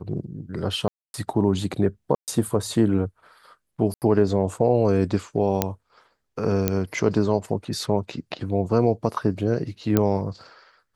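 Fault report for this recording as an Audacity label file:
0.880000	1.140000	drop-out 261 ms
2.150000	2.280000	drop-out 128 ms
3.940000	4.020000	drop-out 78 ms
5.620000	5.620000	click −4 dBFS
6.680000	6.680000	click −6 dBFS
9.970000	9.970000	click −6 dBFS

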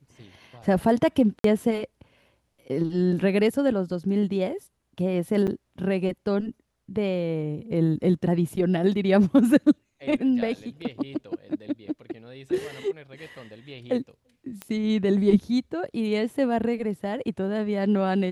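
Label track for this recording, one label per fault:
1.390000	1.440000	drop-out 53 ms
5.470000	5.480000	drop-out 7.3 ms
14.620000	14.620000	click −18 dBFS

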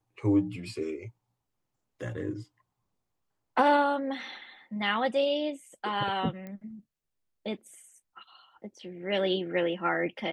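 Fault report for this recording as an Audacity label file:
6.470000	6.470000	click −29 dBFS

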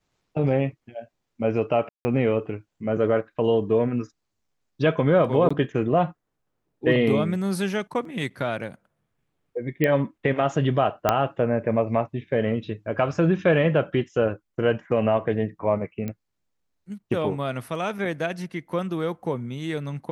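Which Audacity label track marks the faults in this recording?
1.890000	2.050000	drop-out 160 ms
5.490000	5.500000	drop-out 15 ms
8.050000	8.050000	drop-out 2.7 ms
9.840000	9.840000	click −10 dBFS
11.090000	11.090000	click −5 dBFS
16.080000	16.080000	click −18 dBFS

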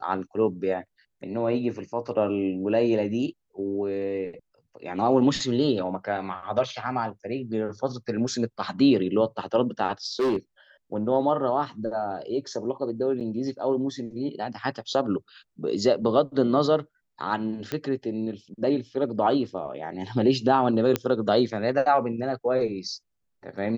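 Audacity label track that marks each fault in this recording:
10.190000	10.360000	clipping −20 dBFS
13.200000	13.210000	drop-out 7.2 ms
17.720000	17.720000	click −15 dBFS
20.960000	20.960000	click −9 dBFS

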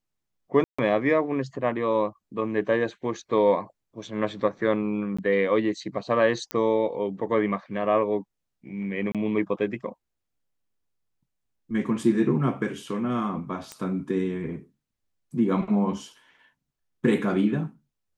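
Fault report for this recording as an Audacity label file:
0.640000	0.790000	drop-out 145 ms
5.170000	5.180000	drop-out 15 ms
6.510000	6.510000	click −13 dBFS
9.120000	9.150000	drop-out 27 ms
13.720000	13.720000	click −20 dBFS

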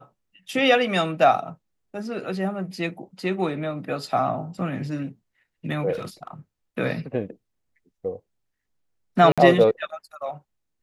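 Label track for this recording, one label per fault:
5.920000	6.280000	clipping −26.5 dBFS
9.320000	9.380000	drop-out 56 ms

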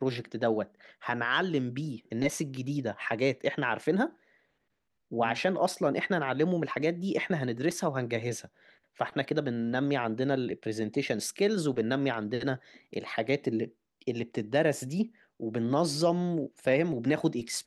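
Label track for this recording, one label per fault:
7.710000	7.710000	drop-out 3 ms

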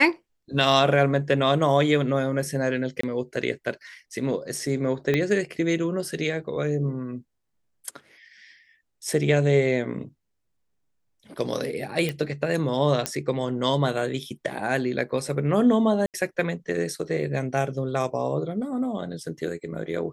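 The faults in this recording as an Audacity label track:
3.010000	3.030000	drop-out 24 ms
5.140000	5.140000	click −11 dBFS
12.090000	12.090000	click −14 dBFS
13.060000	13.060000	click −7 dBFS
16.060000	16.140000	drop-out 78 ms

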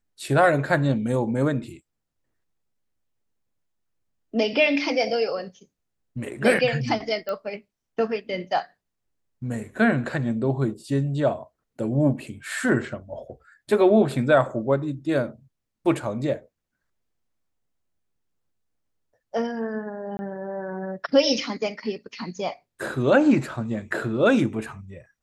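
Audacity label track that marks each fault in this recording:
7.290000	7.290000	click −18 dBFS
20.170000	20.190000	drop-out 20 ms

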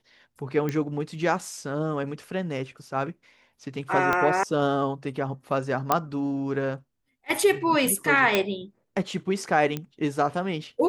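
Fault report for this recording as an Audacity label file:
0.690000	0.690000	click −16 dBFS
4.130000	4.130000	click −10 dBFS
5.920000	5.920000	click −6 dBFS
8.350000	8.350000	click −7 dBFS
9.770000	9.770000	click −16 dBFS

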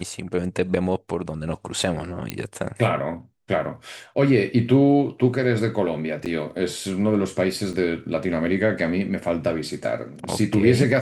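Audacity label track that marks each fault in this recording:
2.300000	2.300000	click −10 dBFS
6.250000	6.260000	drop-out 7.7 ms
7.730000	7.740000	drop-out 6.3 ms

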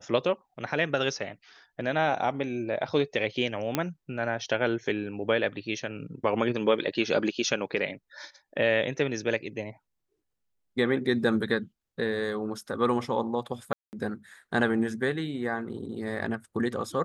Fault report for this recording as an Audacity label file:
3.750000	3.750000	click −10 dBFS
13.730000	13.930000	drop-out 199 ms

